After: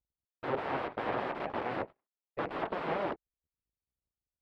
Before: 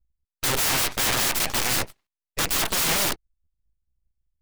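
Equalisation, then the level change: band-pass 560 Hz, Q 0.9; air absorption 430 m; 0.0 dB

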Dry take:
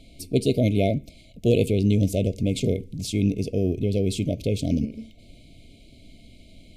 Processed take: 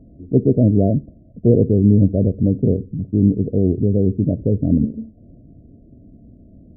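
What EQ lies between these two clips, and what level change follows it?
Gaussian blur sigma 11 samples; HPF 140 Hz 6 dB/oct; low shelf 400 Hz +10 dB; +2.5 dB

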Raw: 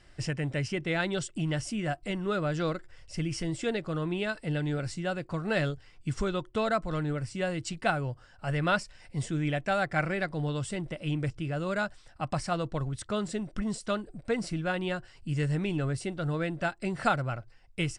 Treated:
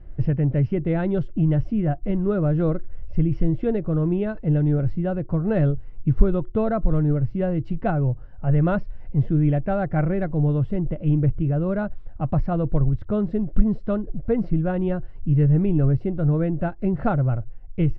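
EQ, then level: air absorption 300 m; tilt -4.5 dB/oct; bell 490 Hz +4 dB 1.9 oct; -1.0 dB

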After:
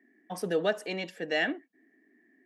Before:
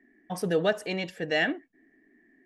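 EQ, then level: HPF 190 Hz 24 dB/oct; -2.5 dB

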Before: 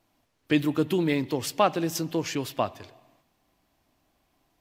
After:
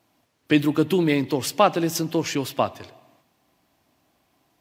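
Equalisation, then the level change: HPF 85 Hz; +4.5 dB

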